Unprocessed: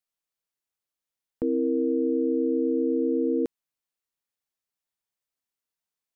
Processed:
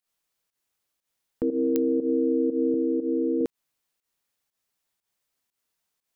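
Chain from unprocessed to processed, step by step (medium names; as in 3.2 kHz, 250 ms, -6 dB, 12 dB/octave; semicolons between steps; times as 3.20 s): peak limiter -25.5 dBFS, peak gain reduction 8.5 dB; 2.74–3.41 s: band-pass filter 340 Hz, Q 1.4; volume shaper 120 bpm, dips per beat 1, -13 dB, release 130 ms; clicks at 1.76 s, -21 dBFS; trim +9 dB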